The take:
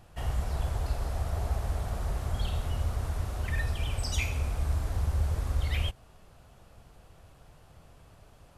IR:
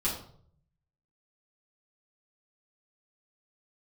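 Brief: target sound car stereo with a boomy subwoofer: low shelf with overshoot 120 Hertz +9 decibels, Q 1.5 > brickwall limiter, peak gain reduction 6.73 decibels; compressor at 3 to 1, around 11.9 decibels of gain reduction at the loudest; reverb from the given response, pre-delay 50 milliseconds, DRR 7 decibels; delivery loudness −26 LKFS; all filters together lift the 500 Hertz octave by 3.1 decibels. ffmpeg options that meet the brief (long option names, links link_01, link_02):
-filter_complex "[0:a]equalizer=frequency=500:width_type=o:gain=4.5,acompressor=threshold=-41dB:ratio=3,asplit=2[link_01][link_02];[1:a]atrim=start_sample=2205,adelay=50[link_03];[link_02][link_03]afir=irnorm=-1:irlink=0,volume=-14dB[link_04];[link_01][link_04]amix=inputs=2:normalize=0,lowshelf=frequency=120:width_type=q:width=1.5:gain=9,volume=7.5dB,alimiter=limit=-15.5dB:level=0:latency=1"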